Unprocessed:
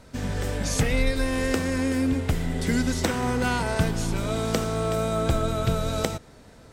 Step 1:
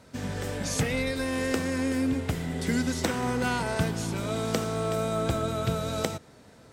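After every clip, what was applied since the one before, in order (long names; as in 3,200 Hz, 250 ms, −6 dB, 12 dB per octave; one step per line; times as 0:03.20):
high-pass filter 88 Hz 12 dB per octave
level −2.5 dB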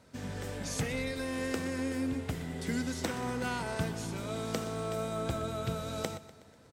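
repeating echo 123 ms, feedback 54%, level −16 dB
level −6.5 dB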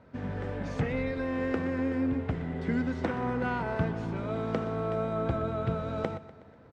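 low-pass filter 1,800 Hz 12 dB per octave
level +4.5 dB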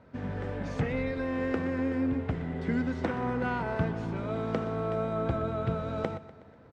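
no processing that can be heard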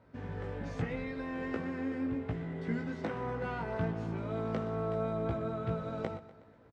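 double-tracking delay 18 ms −4 dB
level −6.5 dB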